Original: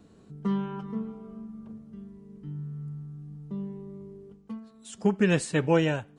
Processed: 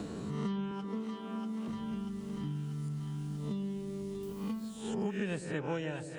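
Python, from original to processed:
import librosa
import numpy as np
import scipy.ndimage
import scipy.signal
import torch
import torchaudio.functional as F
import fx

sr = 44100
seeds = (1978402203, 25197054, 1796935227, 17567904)

p1 = fx.spec_swells(x, sr, rise_s=0.46)
p2 = fx.highpass(p1, sr, hz=230.0, slope=24, at=(0.71, 1.68))
p3 = p2 + fx.echo_split(p2, sr, split_hz=600.0, low_ms=131, high_ms=639, feedback_pct=52, wet_db=-11, dry=0)
p4 = fx.quant_dither(p3, sr, seeds[0], bits=12, dither='triangular', at=(4.23, 5.4))
p5 = fx.band_squash(p4, sr, depth_pct=100)
y = F.gain(torch.from_numpy(p5), -7.5).numpy()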